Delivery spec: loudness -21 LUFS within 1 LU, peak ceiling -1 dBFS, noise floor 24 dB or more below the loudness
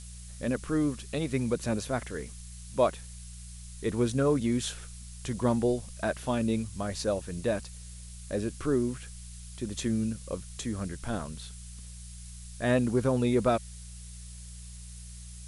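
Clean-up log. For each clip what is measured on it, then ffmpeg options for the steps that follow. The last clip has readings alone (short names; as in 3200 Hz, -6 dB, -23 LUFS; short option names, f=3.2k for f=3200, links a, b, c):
hum 60 Hz; harmonics up to 180 Hz; hum level -43 dBFS; noise floor -45 dBFS; noise floor target -55 dBFS; loudness -30.5 LUFS; peak -12.0 dBFS; loudness target -21.0 LUFS
-> -af "bandreject=f=60:t=h:w=4,bandreject=f=120:t=h:w=4,bandreject=f=180:t=h:w=4"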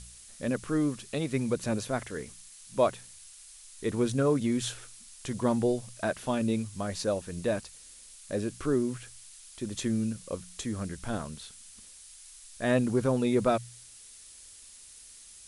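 hum none; noise floor -51 dBFS; noise floor target -55 dBFS
-> -af "afftdn=nr=6:nf=-51"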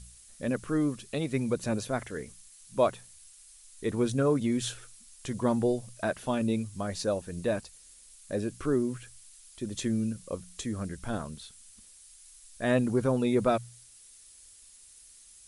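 noise floor -55 dBFS; loudness -30.5 LUFS; peak -12.5 dBFS; loudness target -21.0 LUFS
-> -af "volume=9.5dB"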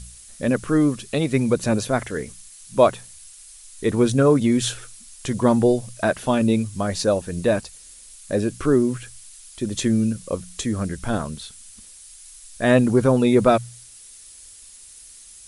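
loudness -21.0 LUFS; peak -3.0 dBFS; noise floor -45 dBFS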